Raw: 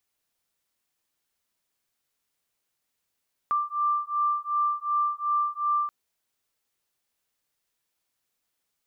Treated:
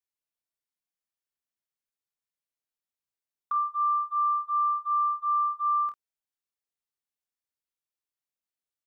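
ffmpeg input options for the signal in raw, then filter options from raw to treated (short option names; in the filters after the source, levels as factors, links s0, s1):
-f lavfi -i "aevalsrc='0.0473*(sin(2*PI*1180*t)+sin(2*PI*1182.7*t))':d=2.38:s=44100"
-filter_complex "[0:a]agate=range=0.141:threshold=0.0251:ratio=16:detection=peak,acompressor=threshold=0.0355:ratio=2.5,asplit=2[s0][s1];[s1]aecho=0:1:27|49:0.398|0.316[s2];[s0][s2]amix=inputs=2:normalize=0"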